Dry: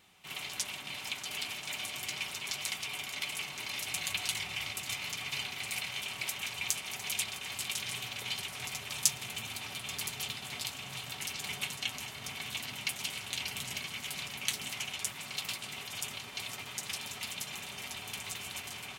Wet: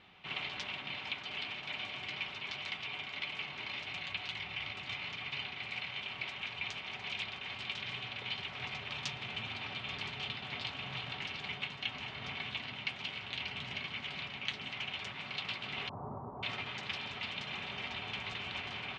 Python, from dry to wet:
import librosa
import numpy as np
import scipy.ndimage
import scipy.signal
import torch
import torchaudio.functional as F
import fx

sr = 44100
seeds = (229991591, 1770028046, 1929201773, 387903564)

y = fx.steep_lowpass(x, sr, hz=1100.0, slope=48, at=(15.89, 16.43))
y = scipy.signal.sosfilt(scipy.signal.butter(4, 3600.0, 'lowpass', fs=sr, output='sos'), y)
y = fx.rider(y, sr, range_db=10, speed_s=0.5)